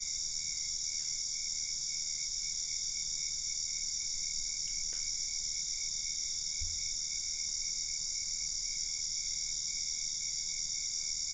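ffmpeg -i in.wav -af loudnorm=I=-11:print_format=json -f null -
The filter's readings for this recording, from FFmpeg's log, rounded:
"input_i" : "-33.6",
"input_tp" : "-22.2",
"input_lra" : "0.1",
"input_thresh" : "-43.6",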